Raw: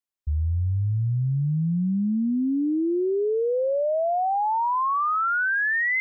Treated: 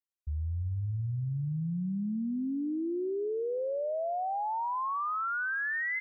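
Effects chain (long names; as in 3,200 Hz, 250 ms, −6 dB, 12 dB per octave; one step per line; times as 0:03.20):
repeating echo 334 ms, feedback 22%, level −18 dB
level −9 dB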